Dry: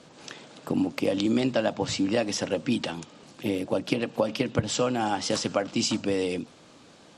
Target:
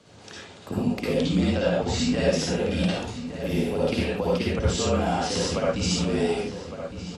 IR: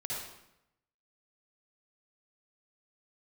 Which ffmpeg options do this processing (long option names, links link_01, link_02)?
-filter_complex "[0:a]asettb=1/sr,asplit=3[link_01][link_02][link_03];[link_01]atrim=end=1.874[link_04];[link_02]atrim=start=1.87:end=4.08,asetpts=PTS-STARTPTS,afade=type=in:duration=0.004:curve=qsin,afade=type=out:start_time=2.206:duration=0.004:curve=qsin,asplit=2[link_05][link_06];[link_06]adelay=50,volume=-6.5dB[link_07];[link_05][link_07]amix=inputs=2:normalize=0,atrim=end_sample=97461[link_08];[link_03]atrim=start=4.076[link_09];[link_04][link_08]acrossfade=duration=0.004:curve1=hsin:curve2=qsin[link_10];[link_10][link_09]acrossfade=duration=0.004:curve1=qsin:curve2=hsin[link_11];[1:a]atrim=start_sample=2205,atrim=end_sample=6615[link_12];[link_11][link_12]afir=irnorm=-1:irlink=0,afreqshift=-42,asplit=2[link_13][link_14];[link_14]adelay=1160,lowpass=frequency=2400:poles=1,volume=-10dB,asplit=2[link_15][link_16];[link_16]adelay=1160,lowpass=frequency=2400:poles=1,volume=0.44,asplit=2[link_17][link_18];[link_18]adelay=1160,lowpass=frequency=2400:poles=1,volume=0.44,asplit=2[link_19][link_20];[link_20]adelay=1160,lowpass=frequency=2400:poles=1,volume=0.44,asplit=2[link_21][link_22];[link_22]adelay=1160,lowpass=frequency=2400:poles=1,volume=0.44[link_23];[link_13][link_15][link_17][link_19][link_21][link_23]amix=inputs=6:normalize=0"